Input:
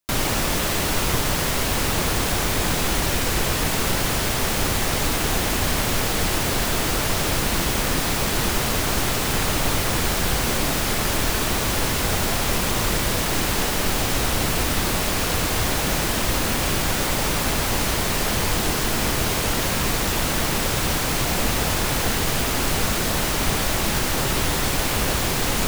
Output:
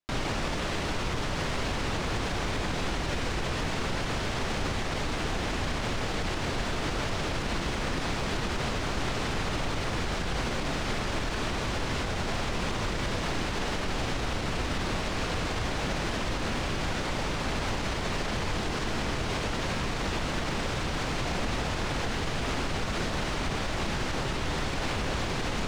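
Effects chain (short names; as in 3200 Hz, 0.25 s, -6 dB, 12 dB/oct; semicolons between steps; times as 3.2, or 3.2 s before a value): air absorption 110 m; limiter -17 dBFS, peak gain reduction 7 dB; gain -4 dB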